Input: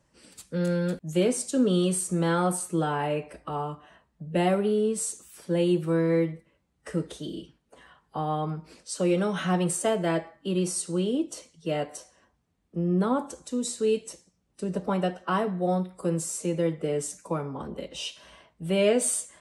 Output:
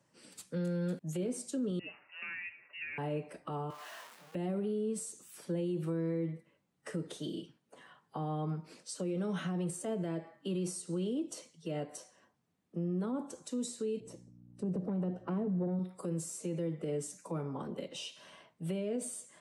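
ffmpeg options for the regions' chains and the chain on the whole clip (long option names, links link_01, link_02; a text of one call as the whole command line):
ffmpeg -i in.wav -filter_complex "[0:a]asettb=1/sr,asplit=3[link_01][link_02][link_03];[link_01]atrim=end=1.794[link_04];[link_02]atrim=start=1.79:end=2.98,asetpts=PTS-STARTPTS,afade=type=in:duration=0.004:curve=qsin,afade=type=out:start_time=1.186:duration=0.004:curve=qsin,highpass=frequency=630:width=0.5412,highpass=frequency=630:width=1.3066,lowpass=frequency=2700:width_type=q:width=0.5098,lowpass=frequency=2700:width_type=q:width=0.6013,lowpass=frequency=2700:width_type=q:width=0.9,lowpass=frequency=2700:width_type=q:width=2.563,afreqshift=-3200[link_05];[link_03]atrim=start=2.976[link_06];[link_04][link_05]acrossfade=duration=0.004:curve1=hsin:curve2=qsin[link_07];[link_07][link_06]acrossfade=duration=0.004:curve1=qsin:curve2=hsin,asettb=1/sr,asplit=3[link_08][link_09][link_10];[link_08]atrim=end=3.704[link_11];[link_09]atrim=start=3.7:end=4.35,asetpts=PTS-STARTPTS,afade=type=in:duration=0.004:curve=qsin,afade=type=out:start_time=0.646:duration=0.004:curve=qsin,aeval=exprs='val(0)+0.5*0.00841*sgn(val(0))':channel_layout=same,highpass=640,asplit=2[link_12][link_13];[link_13]adelay=22,volume=-3.5dB[link_14];[link_12][link_14]amix=inputs=2:normalize=0,atrim=end_sample=28665[link_15];[link_10]atrim=start=4.346[link_16];[link_11][link_15]acrossfade=duration=0.004:curve1=hsin:curve2=qsin[link_17];[link_17][link_16]acrossfade=duration=0.004:curve1=qsin:curve2=hsin,asettb=1/sr,asplit=3[link_18][link_19][link_20];[link_18]atrim=end=14.004[link_21];[link_19]atrim=start=14:end=15.79,asetpts=PTS-STARTPTS,afade=type=in:duration=0.004:curve=qsin,afade=type=out:start_time=1.786:duration=0.004:curve=qsin,aeval=exprs='val(0)+0.002*(sin(2*PI*60*n/s)+sin(2*PI*2*60*n/s)/2+sin(2*PI*3*60*n/s)/3+sin(2*PI*4*60*n/s)/4+sin(2*PI*5*60*n/s)/5)':channel_layout=same,tiltshelf=frequency=860:gain=9,aeval=exprs='(tanh(5.62*val(0)+0.35)-tanh(0.35))/5.62':channel_layout=same[link_22];[link_20]atrim=start=15.786[link_23];[link_21][link_22]acrossfade=duration=0.004:curve1=hsin:curve2=qsin[link_24];[link_24][link_23]acrossfade=duration=0.004:curve1=qsin:curve2=hsin,highpass=frequency=110:width=0.5412,highpass=frequency=110:width=1.3066,acrossover=split=440[link_25][link_26];[link_26]acompressor=threshold=-37dB:ratio=6[link_27];[link_25][link_27]amix=inputs=2:normalize=0,alimiter=level_in=0.5dB:limit=-24dB:level=0:latency=1:release=56,volume=-0.5dB,volume=-3.5dB" out.wav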